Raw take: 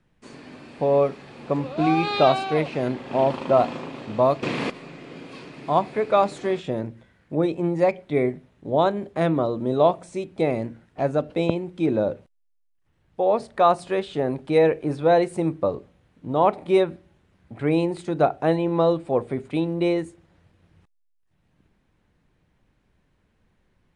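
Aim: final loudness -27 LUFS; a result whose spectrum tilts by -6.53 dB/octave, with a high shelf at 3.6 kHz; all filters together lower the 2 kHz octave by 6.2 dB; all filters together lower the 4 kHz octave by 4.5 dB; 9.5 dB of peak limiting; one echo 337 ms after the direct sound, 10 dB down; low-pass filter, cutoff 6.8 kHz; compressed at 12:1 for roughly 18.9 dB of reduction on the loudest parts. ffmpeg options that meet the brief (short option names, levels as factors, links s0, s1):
-af "lowpass=6800,equalizer=f=2000:t=o:g=-8,highshelf=f=3600:g=4.5,equalizer=f=4000:t=o:g=-5,acompressor=threshold=0.0224:ratio=12,alimiter=level_in=2.24:limit=0.0631:level=0:latency=1,volume=0.447,aecho=1:1:337:0.316,volume=5.01"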